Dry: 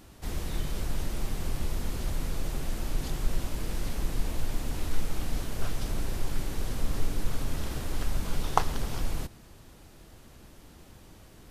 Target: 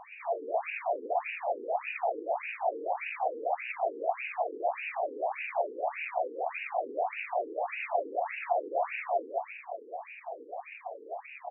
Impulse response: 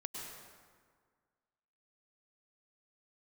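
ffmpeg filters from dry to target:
-filter_complex "[0:a]asplit=2[link_01][link_02];[link_02]acompressor=threshold=-35dB:ratio=5,volume=-1.5dB[link_03];[link_01][link_03]amix=inputs=2:normalize=0,asplit=3[link_04][link_05][link_06];[link_04]bandpass=frequency=530:width_type=q:width=8,volume=0dB[link_07];[link_05]bandpass=frequency=1840:width_type=q:width=8,volume=-6dB[link_08];[link_06]bandpass=frequency=2480:width_type=q:width=8,volume=-9dB[link_09];[link_07][link_08][link_09]amix=inputs=3:normalize=0,asplit=2[link_10][link_11];[link_11]highpass=frequency=720:poles=1,volume=31dB,asoftclip=type=tanh:threshold=-22dB[link_12];[link_10][link_12]amix=inputs=2:normalize=0,lowpass=frequency=1500:poles=1,volume=-6dB,asetrate=58866,aresample=44100,atempo=0.749154,asplit=2[link_13][link_14];[link_14]aecho=0:1:160|280|370|437.5|488.1:0.631|0.398|0.251|0.158|0.1[link_15];[link_13][link_15]amix=inputs=2:normalize=0,afftfilt=real='re*between(b*sr/1024,340*pow(2100/340,0.5+0.5*sin(2*PI*1.7*pts/sr))/1.41,340*pow(2100/340,0.5+0.5*sin(2*PI*1.7*pts/sr))*1.41)':imag='im*between(b*sr/1024,340*pow(2100/340,0.5+0.5*sin(2*PI*1.7*pts/sr))/1.41,340*pow(2100/340,0.5+0.5*sin(2*PI*1.7*pts/sr))*1.41)':win_size=1024:overlap=0.75,volume=5.5dB"

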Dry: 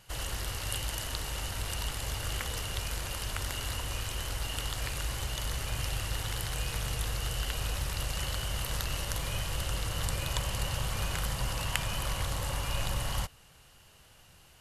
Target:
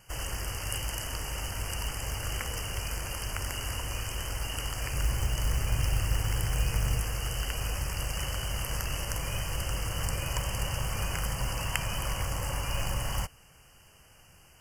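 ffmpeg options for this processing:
ffmpeg -i in.wav -filter_complex "[0:a]asettb=1/sr,asplit=3[link_01][link_02][link_03];[link_01]atrim=end=4.934[link_04];[link_02]atrim=start=4.93:end=7,asetpts=PTS-STARTPTS,afade=type=in:duration=0.004:curve=qsin,afade=type=out:start_time=2.066:duration=0.004:curve=qsin,lowshelf=frequency=270:gain=6.5[link_05];[link_03]atrim=start=6.996[link_06];[link_04][link_05]acrossfade=duration=0.004:curve1=hsin:curve2=qsin[link_07];[link_07][link_06]acrossfade=duration=0.004:curve1=qsin:curve2=hsin,acrusher=bits=5:mode=log:mix=0:aa=0.000001,asuperstop=centerf=3800:order=12:qfactor=2.5,volume=1dB" out.wav

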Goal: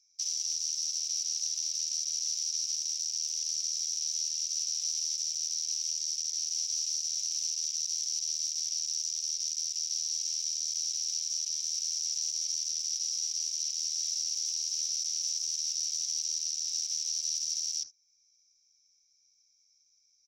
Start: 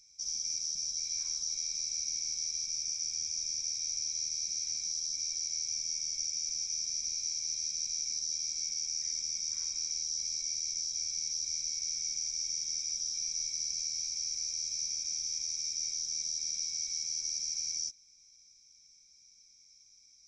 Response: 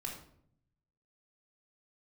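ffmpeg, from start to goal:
-filter_complex "[0:a]acrossover=split=2100[link_01][link_02];[link_01]aeval=exprs='(mod(1120*val(0)+1,2)-1)/1120':channel_layout=same[link_03];[link_03][link_02]amix=inputs=2:normalize=0,alimiter=level_in=6dB:limit=-24dB:level=0:latency=1:release=314,volume=-6dB,aresample=16000,aeval=exprs='clip(val(0),-1,0.0133)':channel_layout=same,aresample=44100,highshelf=frequency=2600:gain=10.5,afwtdn=0.0141,equalizer=frequency=120:width_type=o:width=0.66:gain=-8.5"

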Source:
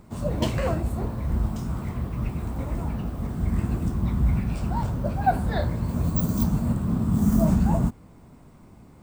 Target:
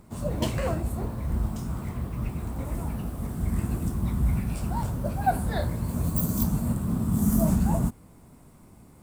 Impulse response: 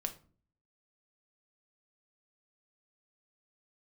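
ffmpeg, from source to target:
-af "asetnsamples=nb_out_samples=441:pad=0,asendcmd='2.65 equalizer g 14.5',equalizer=frequency=11000:width_type=o:width=0.87:gain=8,volume=-2.5dB"

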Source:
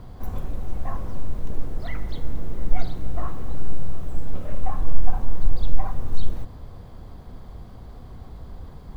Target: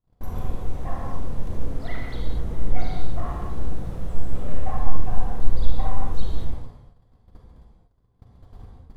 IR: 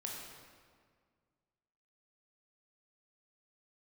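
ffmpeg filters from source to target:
-filter_complex "[0:a]agate=range=-41dB:threshold=-34dB:ratio=16:detection=peak[link_01];[1:a]atrim=start_sample=2205,atrim=end_sample=6174,asetrate=25137,aresample=44100[link_02];[link_01][link_02]afir=irnorm=-1:irlink=0"

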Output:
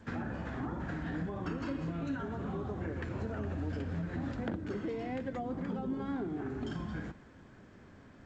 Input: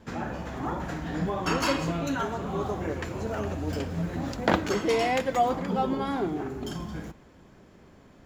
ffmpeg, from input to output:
ffmpeg -i in.wav -filter_complex "[0:a]acrossover=split=460[link_01][link_02];[link_02]acompressor=threshold=-39dB:ratio=6[link_03];[link_01][link_03]amix=inputs=2:normalize=0,bandreject=frequency=189.2:width_type=h:width=4,bandreject=frequency=378.4:width_type=h:width=4,bandreject=frequency=567.6:width_type=h:width=4,acompressor=threshold=-31dB:ratio=6,equalizer=frequency=100:width_type=o:width=0.67:gain=6,equalizer=frequency=250:width_type=o:width=0.67:gain=4,equalizer=frequency=1600:width_type=o:width=0.67:gain=7,equalizer=frequency=6300:width_type=o:width=0.67:gain=-9,volume=-4.5dB" -ar 16000 -c:a g722 out.g722

